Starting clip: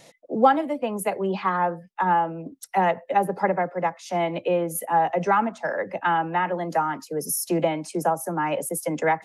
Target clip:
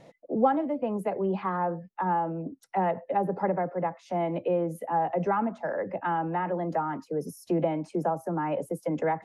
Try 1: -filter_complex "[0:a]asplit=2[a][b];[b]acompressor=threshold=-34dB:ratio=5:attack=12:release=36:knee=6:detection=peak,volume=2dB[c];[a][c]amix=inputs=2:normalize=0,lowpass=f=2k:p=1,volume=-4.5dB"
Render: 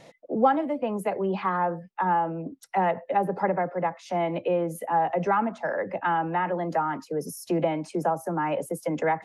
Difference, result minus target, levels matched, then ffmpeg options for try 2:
2000 Hz band +4.0 dB
-filter_complex "[0:a]asplit=2[a][b];[b]acompressor=threshold=-34dB:ratio=5:attack=12:release=36:knee=6:detection=peak,volume=2dB[c];[a][c]amix=inputs=2:normalize=0,lowpass=f=700:p=1,volume=-4.5dB"

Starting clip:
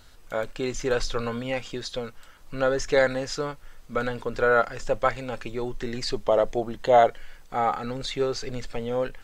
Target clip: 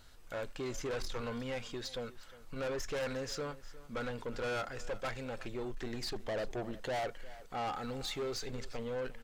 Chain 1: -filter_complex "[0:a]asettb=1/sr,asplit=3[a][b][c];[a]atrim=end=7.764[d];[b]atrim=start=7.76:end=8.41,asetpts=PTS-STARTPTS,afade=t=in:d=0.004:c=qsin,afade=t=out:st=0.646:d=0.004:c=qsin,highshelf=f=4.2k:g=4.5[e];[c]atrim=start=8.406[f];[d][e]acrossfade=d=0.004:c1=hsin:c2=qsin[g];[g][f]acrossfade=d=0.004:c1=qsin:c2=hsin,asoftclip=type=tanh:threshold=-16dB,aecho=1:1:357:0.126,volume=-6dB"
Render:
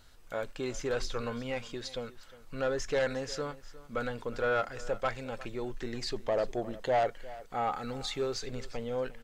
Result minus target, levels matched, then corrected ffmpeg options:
soft clip: distortion -9 dB
-filter_complex "[0:a]asettb=1/sr,asplit=3[a][b][c];[a]atrim=end=7.764[d];[b]atrim=start=7.76:end=8.41,asetpts=PTS-STARTPTS,afade=t=in:d=0.004:c=qsin,afade=t=out:st=0.646:d=0.004:c=qsin,highshelf=f=4.2k:g=4.5[e];[c]atrim=start=8.406[f];[d][e]acrossfade=d=0.004:c1=hsin:c2=qsin[g];[g][f]acrossfade=d=0.004:c1=qsin:c2=hsin,asoftclip=type=tanh:threshold=-27.5dB,aecho=1:1:357:0.126,volume=-6dB"

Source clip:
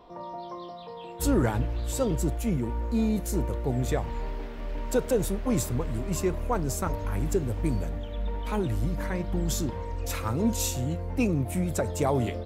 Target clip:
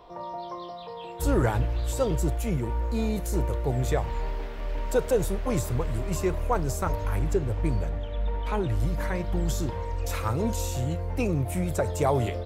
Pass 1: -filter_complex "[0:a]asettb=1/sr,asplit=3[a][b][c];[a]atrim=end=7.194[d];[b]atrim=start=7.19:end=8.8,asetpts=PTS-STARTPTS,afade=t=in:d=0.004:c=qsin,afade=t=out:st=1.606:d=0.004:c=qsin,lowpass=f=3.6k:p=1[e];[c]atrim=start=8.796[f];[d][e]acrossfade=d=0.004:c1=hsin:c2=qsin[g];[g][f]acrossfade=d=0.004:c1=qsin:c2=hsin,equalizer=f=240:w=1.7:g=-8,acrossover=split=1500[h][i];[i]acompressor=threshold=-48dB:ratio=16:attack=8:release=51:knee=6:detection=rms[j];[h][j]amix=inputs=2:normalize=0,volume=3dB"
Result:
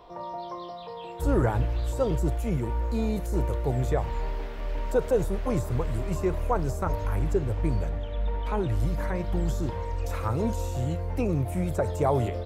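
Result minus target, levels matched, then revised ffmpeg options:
compressor: peak gain reduction +10 dB
-filter_complex "[0:a]asettb=1/sr,asplit=3[a][b][c];[a]atrim=end=7.194[d];[b]atrim=start=7.19:end=8.8,asetpts=PTS-STARTPTS,afade=t=in:d=0.004:c=qsin,afade=t=out:st=1.606:d=0.004:c=qsin,lowpass=f=3.6k:p=1[e];[c]atrim=start=8.796[f];[d][e]acrossfade=d=0.004:c1=hsin:c2=qsin[g];[g][f]acrossfade=d=0.004:c1=qsin:c2=hsin,equalizer=f=240:w=1.7:g=-8,acrossover=split=1500[h][i];[i]acompressor=threshold=-37.5dB:ratio=16:attack=8:release=51:knee=6:detection=rms[j];[h][j]amix=inputs=2:normalize=0,volume=3dB"

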